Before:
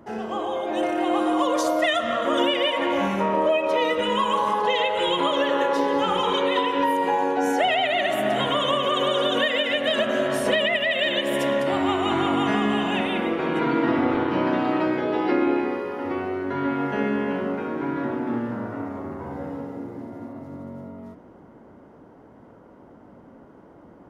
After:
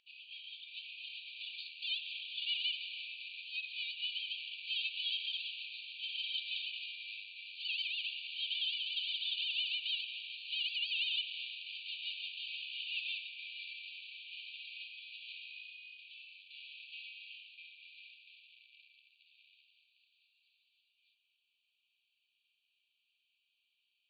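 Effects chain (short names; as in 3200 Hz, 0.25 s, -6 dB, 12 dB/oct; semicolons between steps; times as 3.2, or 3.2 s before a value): in parallel at +2 dB: compressor, threshold -31 dBFS, peak gain reduction 13.5 dB; on the sum: overloaded stage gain 21 dB; brick-wall FIR band-pass 2300–4700 Hz; gain -7 dB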